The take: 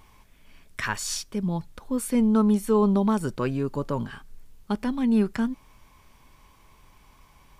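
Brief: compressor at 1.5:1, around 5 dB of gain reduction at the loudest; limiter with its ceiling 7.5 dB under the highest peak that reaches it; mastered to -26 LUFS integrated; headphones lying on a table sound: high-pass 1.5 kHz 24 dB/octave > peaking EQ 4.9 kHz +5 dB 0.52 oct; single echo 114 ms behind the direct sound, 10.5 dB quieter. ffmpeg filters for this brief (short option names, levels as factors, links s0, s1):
-af "acompressor=threshold=0.0282:ratio=1.5,alimiter=limit=0.0708:level=0:latency=1,highpass=f=1500:w=0.5412,highpass=f=1500:w=1.3066,equalizer=f=4900:t=o:w=0.52:g=5,aecho=1:1:114:0.299,volume=3.98"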